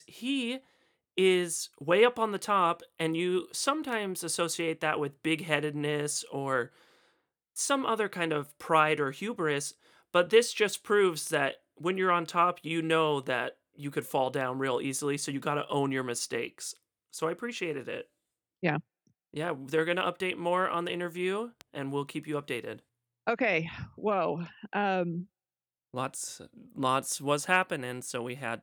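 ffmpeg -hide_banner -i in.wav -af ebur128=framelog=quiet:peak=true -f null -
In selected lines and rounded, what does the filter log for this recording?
Integrated loudness:
  I:         -30.2 LUFS
  Threshold: -40.6 LUFS
Loudness range:
  LRA:         5.6 LU
  Threshold: -50.8 LUFS
  LRA low:   -33.5 LUFS
  LRA high:  -27.9 LUFS
True peak:
  Peak:       -9.2 dBFS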